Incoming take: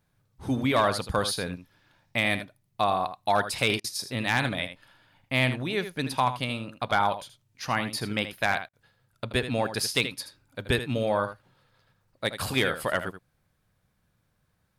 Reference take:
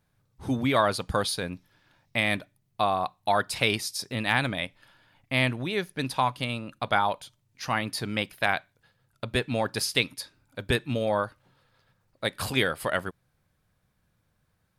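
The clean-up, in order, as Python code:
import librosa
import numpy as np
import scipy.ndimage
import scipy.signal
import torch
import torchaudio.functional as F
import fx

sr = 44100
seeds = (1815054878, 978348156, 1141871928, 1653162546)

y = fx.fix_declip(x, sr, threshold_db=-13.5)
y = fx.fix_interpolate(y, sr, at_s=(3.8, 8.69), length_ms=41.0)
y = fx.fix_echo_inverse(y, sr, delay_ms=79, level_db=-11.0)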